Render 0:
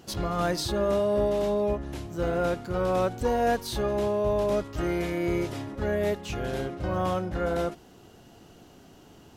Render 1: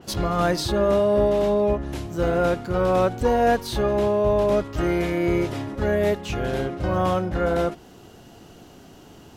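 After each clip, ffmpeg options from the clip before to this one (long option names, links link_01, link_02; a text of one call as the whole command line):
ffmpeg -i in.wav -af "adynamicequalizer=threshold=0.00447:dfrequency=4000:dqfactor=0.7:tfrequency=4000:tqfactor=0.7:attack=5:release=100:ratio=0.375:range=2.5:mode=cutabove:tftype=highshelf,volume=5.5dB" out.wav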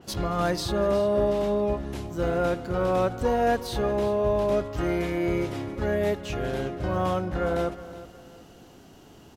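ffmpeg -i in.wav -af "aecho=1:1:366|732|1098:0.168|0.0588|0.0206,volume=-4dB" out.wav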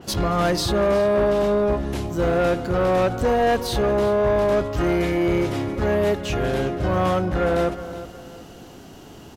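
ffmpeg -i in.wav -af "asoftclip=type=tanh:threshold=-22.5dB,volume=8dB" out.wav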